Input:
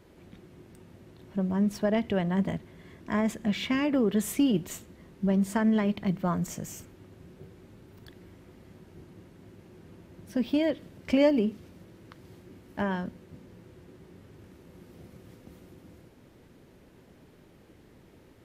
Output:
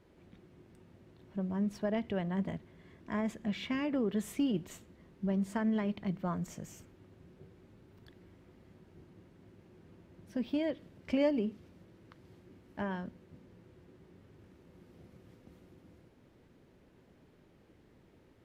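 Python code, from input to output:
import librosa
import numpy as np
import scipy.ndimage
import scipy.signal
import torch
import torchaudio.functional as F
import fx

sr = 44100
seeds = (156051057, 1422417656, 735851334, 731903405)

y = fx.high_shelf(x, sr, hz=7400.0, db=-9.0)
y = F.gain(torch.from_numpy(y), -7.0).numpy()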